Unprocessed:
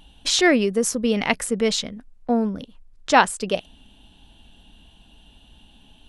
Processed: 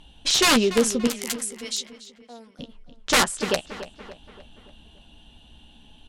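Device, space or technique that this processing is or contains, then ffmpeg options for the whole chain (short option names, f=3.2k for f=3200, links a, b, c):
overflowing digital effects unit: -filter_complex "[0:a]aeval=exprs='(mod(3.55*val(0)+1,2)-1)/3.55':c=same,lowpass=10k,asettb=1/sr,asplit=3[a][b][c];[a]atrim=end=1.074[d];[b]atrim=start=1.07:end=2.59,asetpts=PTS-STARTPTS,afade=t=in:d=0.004:c=qsin,afade=t=out:st=1.516:d=0.004:c=qsin,aderivative[e];[c]atrim=start=2.586[f];[d][e]acrossfade=d=0.004:c1=hsin:c2=qsin[g];[g][f]acrossfade=d=0.004:c1=qsin:c2=hsin,asplit=2[h][i];[i]adelay=13,volume=-10dB[j];[h][j]amix=inputs=2:normalize=0,asplit=2[k][l];[l]adelay=287,lowpass=f=3.8k:p=1,volume=-13dB,asplit=2[m][n];[n]adelay=287,lowpass=f=3.8k:p=1,volume=0.5,asplit=2[o][p];[p]adelay=287,lowpass=f=3.8k:p=1,volume=0.5,asplit=2[q][r];[r]adelay=287,lowpass=f=3.8k:p=1,volume=0.5,asplit=2[s][t];[t]adelay=287,lowpass=f=3.8k:p=1,volume=0.5[u];[k][m][o][q][s][u]amix=inputs=6:normalize=0"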